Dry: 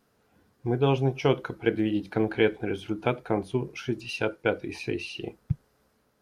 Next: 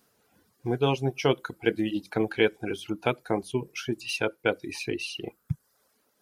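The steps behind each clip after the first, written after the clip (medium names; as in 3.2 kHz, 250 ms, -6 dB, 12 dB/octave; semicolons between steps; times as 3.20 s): treble shelf 4.3 kHz +10.5 dB; reverb removal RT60 0.77 s; bass shelf 74 Hz -9 dB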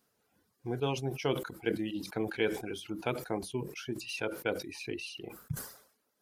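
decay stretcher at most 100 dB/s; trim -8 dB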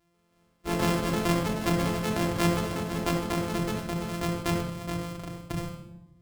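sorted samples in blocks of 256 samples; simulated room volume 3500 m³, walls furnished, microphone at 3.1 m; ever faster or slower copies 138 ms, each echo +4 st, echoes 3, each echo -6 dB; trim +2.5 dB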